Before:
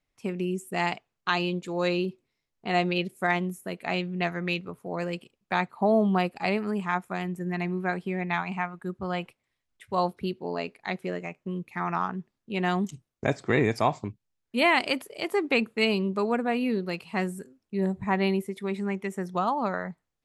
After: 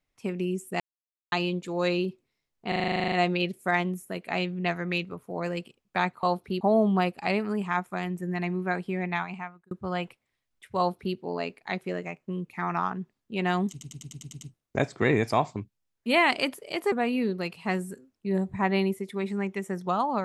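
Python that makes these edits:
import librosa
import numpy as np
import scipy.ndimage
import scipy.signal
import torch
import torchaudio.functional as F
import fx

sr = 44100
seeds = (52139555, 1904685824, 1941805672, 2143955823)

y = fx.edit(x, sr, fx.silence(start_s=0.8, length_s=0.52),
    fx.stutter(start_s=2.68, slice_s=0.04, count=12),
    fx.fade_out_span(start_s=8.25, length_s=0.64),
    fx.duplicate(start_s=9.96, length_s=0.38, to_s=5.79),
    fx.stutter(start_s=12.89, slice_s=0.1, count=8),
    fx.cut(start_s=15.4, length_s=1.0), tone=tone)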